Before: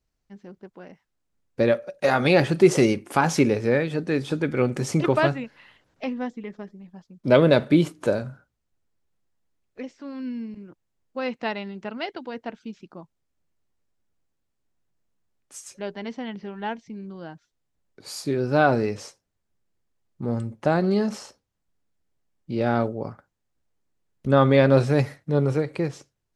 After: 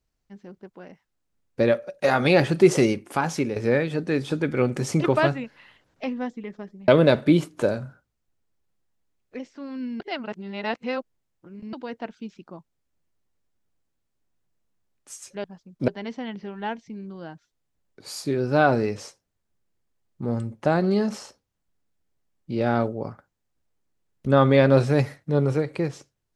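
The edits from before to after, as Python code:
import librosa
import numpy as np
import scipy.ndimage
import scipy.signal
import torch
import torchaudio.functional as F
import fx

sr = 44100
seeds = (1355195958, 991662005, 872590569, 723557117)

y = fx.edit(x, sr, fx.fade_out_to(start_s=2.69, length_s=0.87, floor_db=-8.0),
    fx.move(start_s=6.88, length_s=0.44, to_s=15.88),
    fx.reverse_span(start_s=10.44, length_s=1.73), tone=tone)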